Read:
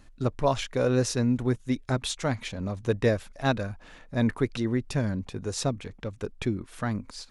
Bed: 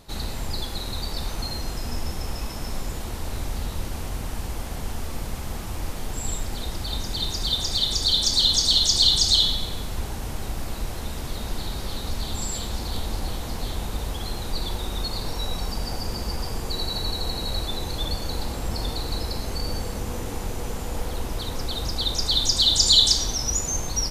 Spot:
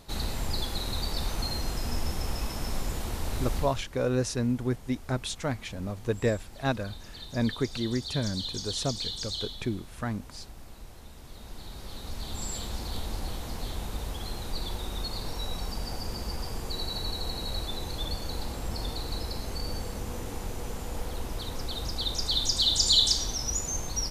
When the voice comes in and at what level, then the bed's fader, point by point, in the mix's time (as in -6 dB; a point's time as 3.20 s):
3.20 s, -3.0 dB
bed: 3.57 s -1.5 dB
3.86 s -16.5 dB
11.18 s -16.5 dB
12.49 s -5.5 dB